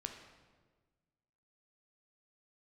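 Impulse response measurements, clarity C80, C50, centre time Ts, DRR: 8.0 dB, 6.0 dB, 31 ms, 3.5 dB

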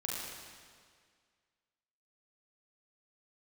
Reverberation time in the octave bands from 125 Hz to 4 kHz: 1.9, 1.9, 1.9, 1.9, 1.9, 1.8 seconds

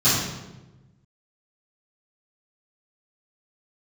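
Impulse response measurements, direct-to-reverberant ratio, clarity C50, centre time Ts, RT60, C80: −15.5 dB, −0.5 dB, 73 ms, 1.1 s, 3.0 dB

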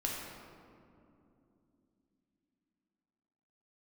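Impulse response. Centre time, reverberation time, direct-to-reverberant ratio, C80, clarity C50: 104 ms, 2.8 s, −3.0 dB, 2.0 dB, 0.0 dB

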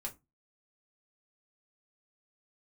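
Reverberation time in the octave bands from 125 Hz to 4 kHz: 0.35, 0.30, 0.20, 0.20, 0.15, 0.15 seconds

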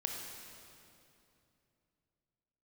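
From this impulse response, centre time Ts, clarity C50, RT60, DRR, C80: 93 ms, 1.5 dB, 2.8 s, 0.5 dB, 3.0 dB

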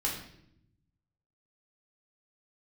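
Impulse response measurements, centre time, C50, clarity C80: 36 ms, 5.0 dB, 8.5 dB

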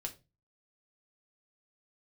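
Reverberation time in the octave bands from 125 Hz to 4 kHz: 0.50, 0.40, 0.30, 0.25, 0.20, 0.20 seconds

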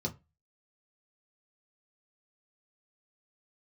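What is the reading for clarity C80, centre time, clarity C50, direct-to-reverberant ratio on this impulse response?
26.5 dB, 8 ms, 19.0 dB, −0.5 dB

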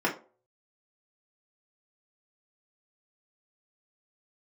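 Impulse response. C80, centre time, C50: 17.0 dB, 18 ms, 11.5 dB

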